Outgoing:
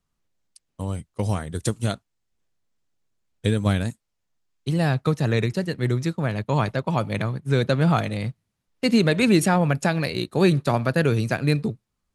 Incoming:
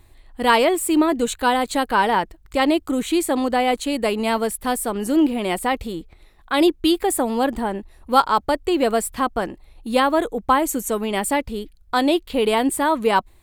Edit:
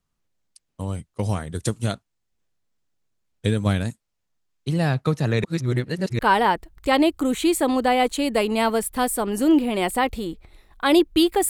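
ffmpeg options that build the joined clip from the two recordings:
-filter_complex "[0:a]apad=whole_dur=11.49,atrim=end=11.49,asplit=2[a][b];[a]atrim=end=5.442[c];[b]atrim=start=5.438:end=6.192,asetpts=PTS-STARTPTS,areverse[d];[1:a]atrim=start=1.868:end=7.17[e];[c][d]acrossfade=d=0.004:c1=hsin:c2=hsin[f];[f][e]acrossfade=d=0.004:c1=hsin:c2=hsin"

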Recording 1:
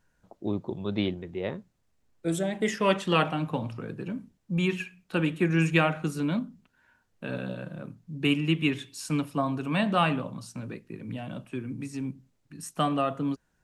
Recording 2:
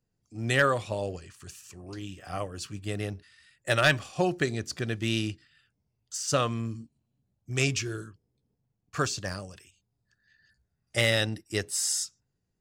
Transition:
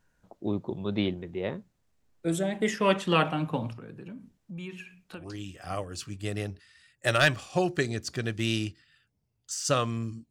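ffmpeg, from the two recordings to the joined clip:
-filter_complex "[0:a]asettb=1/sr,asplit=3[a][b][c];[a]atrim=end=3.734[d];[b]atrim=start=3.73:end=5.25,asetpts=PTS-STARTPTS,afade=t=in:d=0.004:c=qsin,afade=t=out:st=1.516:d=0.004:c=qsin,acompressor=threshold=-43dB:ratio=2.5:attack=3.2:release=140:knee=1:detection=peak[e];[c]atrim=start=5.246[f];[d][e]acrossfade=d=0.004:c1=hsin:c2=qsin[g];[g][f]acrossfade=d=0.004:c1=qsin:c2=hsin,apad=whole_dur=10.3,atrim=end=10.3,atrim=end=5.25,asetpts=PTS-STARTPTS[h];[1:a]atrim=start=1.78:end=6.93,asetpts=PTS-STARTPTS[i];[h][i]acrossfade=d=0.1:c1=tri:c2=tri"

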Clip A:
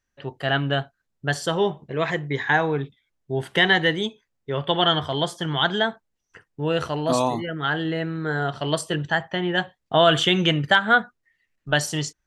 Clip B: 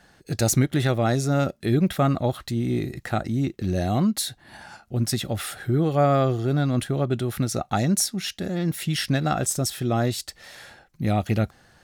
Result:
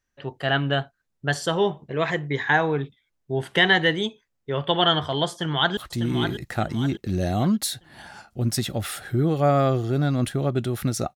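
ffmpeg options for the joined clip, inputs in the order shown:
-filter_complex "[0:a]apad=whole_dur=11.15,atrim=end=11.15,atrim=end=5.772[a];[1:a]atrim=start=2.318:end=7.7[b];[a][b]acrossfade=d=0.004:c1=hsin:c2=hsin,asplit=2[c][d];[d]afade=t=in:st=5.3:d=0.01,afade=t=out:st=5.77:d=0.01,aecho=0:1:600|1200|1800|2400|3000:0.398107|0.159243|0.0636971|0.0254789|0.0101915[e];[c][e]amix=inputs=2:normalize=0"

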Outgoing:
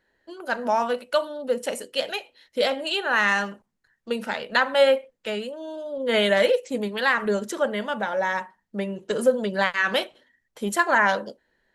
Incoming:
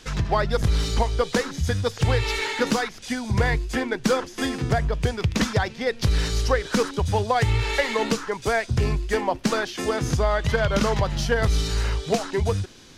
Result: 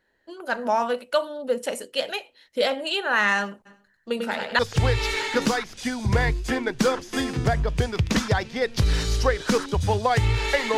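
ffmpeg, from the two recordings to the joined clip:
-filter_complex "[0:a]asplit=3[a][b][c];[a]afade=t=out:st=3.65:d=0.02[d];[b]aecho=1:1:96|192|288|384:0.596|0.167|0.0467|0.0131,afade=t=in:st=3.65:d=0.02,afade=t=out:st=4.59:d=0.02[e];[c]afade=t=in:st=4.59:d=0.02[f];[d][e][f]amix=inputs=3:normalize=0,apad=whole_dur=10.77,atrim=end=10.77,atrim=end=4.592[g];[1:a]atrim=start=1.838:end=8.02[h];[g][h]acrossfade=d=0.004:c1=hsin:c2=hsin"

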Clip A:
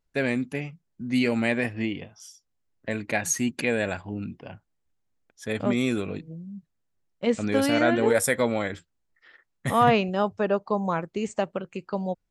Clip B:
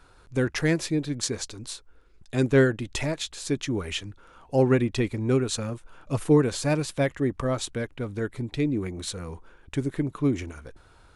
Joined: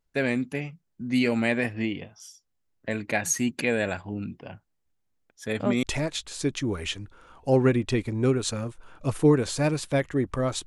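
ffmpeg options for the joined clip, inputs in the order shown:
-filter_complex "[0:a]apad=whole_dur=10.66,atrim=end=10.66,atrim=end=5.832[a];[1:a]atrim=start=2.888:end=7.72[b];[a][b]acrossfade=d=0.004:c1=hsin:c2=hsin"

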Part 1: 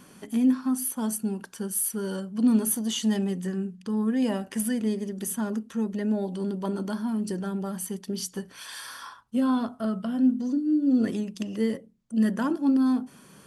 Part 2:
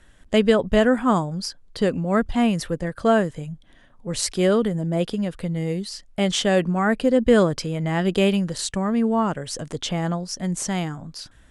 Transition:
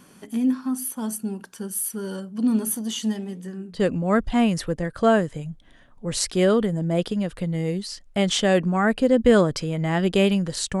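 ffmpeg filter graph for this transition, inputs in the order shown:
-filter_complex "[0:a]asplit=3[a][b][c];[a]afade=t=out:st=3.11:d=0.02[d];[b]flanger=delay=4.6:depth=8.6:regen=-87:speed=0.87:shape=triangular,afade=t=in:st=3.11:d=0.02,afade=t=out:st=3.84:d=0.02[e];[c]afade=t=in:st=3.84:d=0.02[f];[d][e][f]amix=inputs=3:normalize=0,apad=whole_dur=10.8,atrim=end=10.8,atrim=end=3.84,asetpts=PTS-STARTPTS[g];[1:a]atrim=start=1.72:end=8.82,asetpts=PTS-STARTPTS[h];[g][h]acrossfade=d=0.14:c1=tri:c2=tri"

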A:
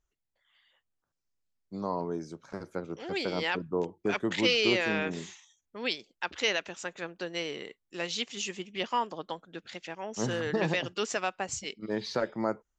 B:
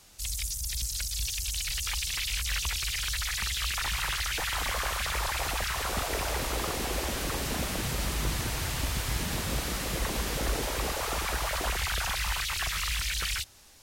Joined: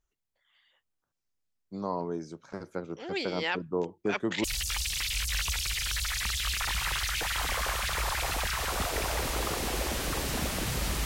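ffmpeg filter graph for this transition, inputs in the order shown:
-filter_complex "[0:a]apad=whole_dur=11.05,atrim=end=11.05,atrim=end=4.442[a];[1:a]atrim=start=1.608:end=8.22[b];[a][b]acrossfade=d=0.004:c1=hsin:c2=hsin"

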